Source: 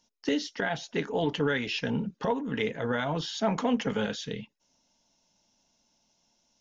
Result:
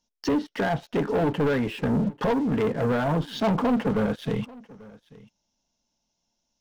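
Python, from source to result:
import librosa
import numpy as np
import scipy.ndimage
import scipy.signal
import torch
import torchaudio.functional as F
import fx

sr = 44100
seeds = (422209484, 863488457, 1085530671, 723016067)

y = fx.env_lowpass_down(x, sr, base_hz=1300.0, full_db=-28.5)
y = fx.low_shelf(y, sr, hz=85.0, db=8.5)
y = fx.leveller(y, sr, passes=3)
y = fx.peak_eq(y, sr, hz=2000.0, db=-2.0, octaves=0.77)
y = y + 10.0 ** (-22.0 / 20.0) * np.pad(y, (int(840 * sr / 1000.0), 0))[:len(y)]
y = y * librosa.db_to_amplitude(-1.5)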